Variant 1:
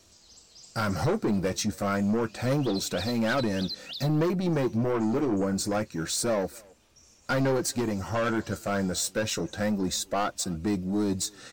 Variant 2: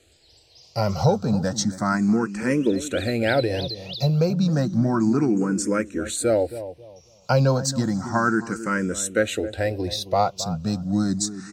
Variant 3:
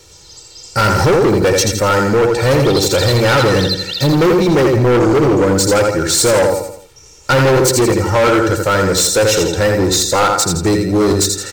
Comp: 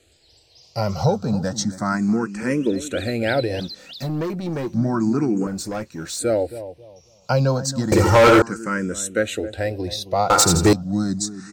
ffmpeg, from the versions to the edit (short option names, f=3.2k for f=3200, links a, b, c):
-filter_complex "[0:a]asplit=2[a][b];[2:a]asplit=2[c][d];[1:a]asplit=5[e][f][g][h][i];[e]atrim=end=3.602[j];[a]atrim=start=3.598:end=4.742[k];[f]atrim=start=4.738:end=5.472[l];[b]atrim=start=5.468:end=6.192[m];[g]atrim=start=6.188:end=7.922[n];[c]atrim=start=7.918:end=8.422[o];[h]atrim=start=8.418:end=10.302[p];[d]atrim=start=10.298:end=10.732[q];[i]atrim=start=10.728[r];[j][k]acrossfade=d=0.004:c1=hsin:c2=hsin[s];[s][l]acrossfade=d=0.004:c1=hsin:c2=hsin[t];[t][m]acrossfade=d=0.004:c1=hsin:c2=hsin[u];[u][n]acrossfade=d=0.004:c1=hsin:c2=hsin[v];[v][o]acrossfade=d=0.004:c1=hsin:c2=hsin[w];[w][p]acrossfade=d=0.004:c1=hsin:c2=hsin[x];[x][q]acrossfade=d=0.004:c1=hsin:c2=hsin[y];[y][r]acrossfade=d=0.004:c1=hsin:c2=hsin"